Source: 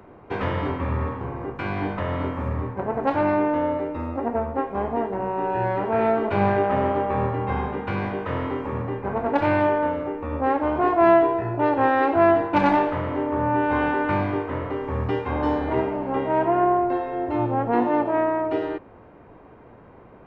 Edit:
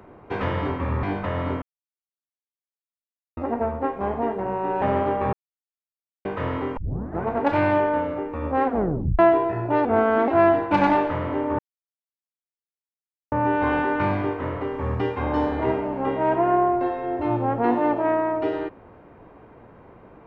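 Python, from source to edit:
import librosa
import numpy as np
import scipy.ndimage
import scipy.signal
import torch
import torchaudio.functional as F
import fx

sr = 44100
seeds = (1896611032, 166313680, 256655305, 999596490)

y = fx.edit(x, sr, fx.cut(start_s=1.03, length_s=0.74),
    fx.silence(start_s=2.36, length_s=1.75),
    fx.cut(start_s=5.56, length_s=1.15),
    fx.silence(start_s=7.22, length_s=0.92),
    fx.tape_start(start_s=8.66, length_s=0.47),
    fx.tape_stop(start_s=10.53, length_s=0.55),
    fx.speed_span(start_s=11.74, length_s=0.36, speed=0.84),
    fx.insert_silence(at_s=13.41, length_s=1.73), tone=tone)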